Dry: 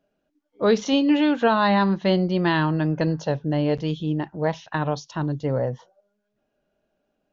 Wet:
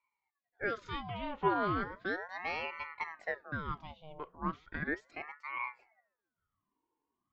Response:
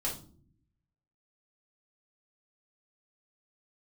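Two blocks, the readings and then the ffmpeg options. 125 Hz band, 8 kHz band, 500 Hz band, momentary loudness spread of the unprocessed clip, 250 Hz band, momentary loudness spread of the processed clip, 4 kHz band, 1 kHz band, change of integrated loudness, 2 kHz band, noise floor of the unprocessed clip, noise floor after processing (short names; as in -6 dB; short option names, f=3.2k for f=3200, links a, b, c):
-21.0 dB, n/a, -17.0 dB, 8 LU, -21.0 dB, 11 LU, -18.0 dB, -11.0 dB, -15.0 dB, -8.0 dB, -76 dBFS, under -85 dBFS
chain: -filter_complex "[0:a]asplit=3[a][b][c];[a]bandpass=f=730:t=q:w=8,volume=0dB[d];[b]bandpass=f=1.09k:t=q:w=8,volume=-6dB[e];[c]bandpass=f=2.44k:t=q:w=8,volume=-9dB[f];[d][e][f]amix=inputs=3:normalize=0,asplit=2[g][h];[1:a]atrim=start_sample=2205[i];[h][i]afir=irnorm=-1:irlink=0,volume=-22.5dB[j];[g][j]amix=inputs=2:normalize=0,aeval=exprs='val(0)*sin(2*PI*970*n/s+970*0.7/0.36*sin(2*PI*0.36*n/s))':c=same"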